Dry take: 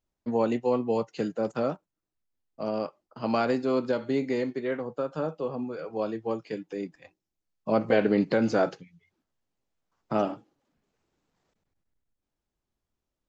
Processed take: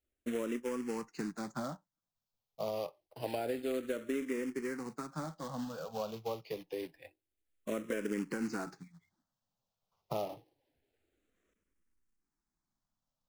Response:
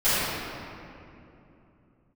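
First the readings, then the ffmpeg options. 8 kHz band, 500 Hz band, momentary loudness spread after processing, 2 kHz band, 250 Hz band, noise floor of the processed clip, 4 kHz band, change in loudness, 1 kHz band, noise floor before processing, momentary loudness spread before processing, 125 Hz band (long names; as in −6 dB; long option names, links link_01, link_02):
can't be measured, −11.0 dB, 9 LU, −8.5 dB, −9.5 dB, below −85 dBFS, −6.0 dB, −10.5 dB, −11.0 dB, below −85 dBFS, 12 LU, −10.0 dB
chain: -filter_complex "[0:a]acrusher=bits=3:mode=log:mix=0:aa=0.000001,asplit=2[link_01][link_02];[link_02]lowshelf=frequency=330:gain=-11[link_03];[1:a]atrim=start_sample=2205,atrim=end_sample=3087,lowpass=1100[link_04];[link_03][link_04]afir=irnorm=-1:irlink=0,volume=-32dB[link_05];[link_01][link_05]amix=inputs=2:normalize=0,acrossover=split=1100|4600[link_06][link_07][link_08];[link_06]acompressor=threshold=-31dB:ratio=4[link_09];[link_07]acompressor=threshold=-44dB:ratio=4[link_10];[link_08]acompressor=threshold=-50dB:ratio=4[link_11];[link_09][link_10][link_11]amix=inputs=3:normalize=0,asplit=2[link_12][link_13];[link_13]afreqshift=-0.27[link_14];[link_12][link_14]amix=inputs=2:normalize=1,volume=-1dB"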